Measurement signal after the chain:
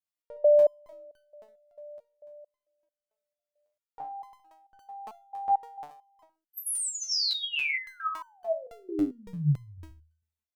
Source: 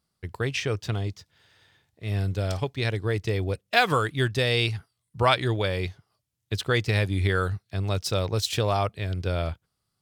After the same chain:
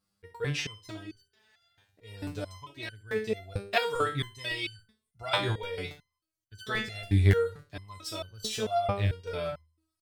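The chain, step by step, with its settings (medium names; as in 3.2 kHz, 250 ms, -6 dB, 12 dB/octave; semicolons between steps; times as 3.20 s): de-hum 79.94 Hz, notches 7; on a send: feedback delay 65 ms, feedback 17%, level -13 dB; on the sum: crackling interface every 0.28 s, samples 64, repeat, from 0.59 s; resonator arpeggio 4.5 Hz 100–1500 Hz; trim +8 dB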